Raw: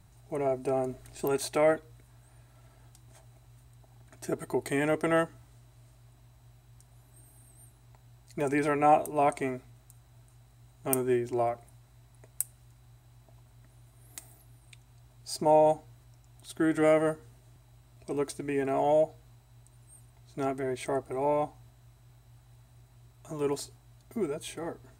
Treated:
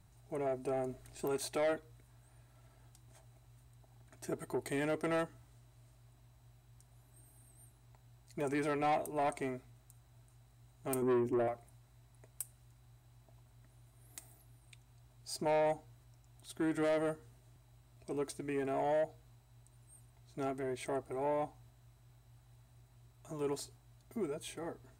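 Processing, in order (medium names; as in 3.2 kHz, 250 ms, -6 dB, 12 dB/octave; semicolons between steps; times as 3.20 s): 11.02–11.48 s: graphic EQ 125/250/500/1000/2000/4000/8000 Hz +4/+10/+8/-12/+6/-12/-3 dB; saturation -22 dBFS, distortion -11 dB; trim -5.5 dB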